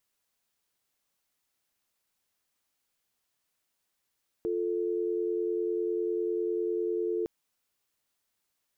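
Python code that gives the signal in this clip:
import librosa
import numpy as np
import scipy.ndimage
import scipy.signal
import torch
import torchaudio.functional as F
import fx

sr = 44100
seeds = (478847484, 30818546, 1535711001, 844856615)

y = fx.call_progress(sr, length_s=2.81, kind='dial tone', level_db=-30.0)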